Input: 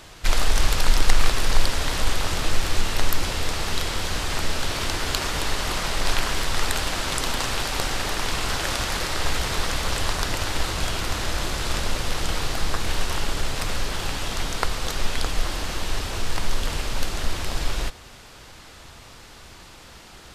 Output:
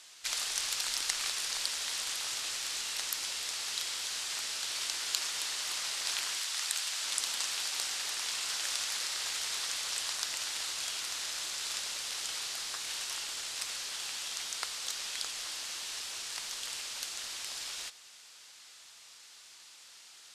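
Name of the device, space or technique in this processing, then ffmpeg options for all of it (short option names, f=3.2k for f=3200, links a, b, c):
piezo pickup straight into a mixer: -filter_complex "[0:a]lowpass=8.1k,aderivative,asettb=1/sr,asplit=3[a][b][c];[a]atrim=end=6.374[d];[b]atrim=start=6.37:end=7.02,asetpts=PTS-STARTPTS,afade=t=in:d=0.004:c=qsin,afade=t=out:st=0.646:d=0.004:c=qsin,lowshelf=f=500:g=-9.5[e];[c]atrim=start=7.016[f];[d][e]acrossfade=d=0.004:c1=hsin:c2=qsin[g];[g][f]acrossfade=d=0.004:c1=qsin:c2=hsin"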